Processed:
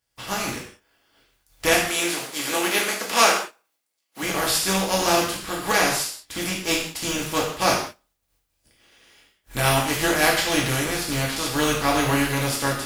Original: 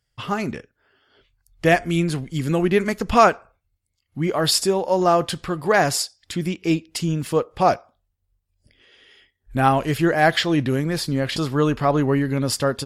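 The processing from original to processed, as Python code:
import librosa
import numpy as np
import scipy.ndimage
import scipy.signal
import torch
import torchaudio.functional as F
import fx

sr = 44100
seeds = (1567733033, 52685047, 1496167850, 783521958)

y = fx.spec_flatten(x, sr, power=0.45)
y = fx.highpass(y, sr, hz=320.0, slope=12, at=(1.78, 4.23))
y = fx.rev_gated(y, sr, seeds[0], gate_ms=210, shape='falling', drr_db=-2.5)
y = y * 10.0 ** (-6.5 / 20.0)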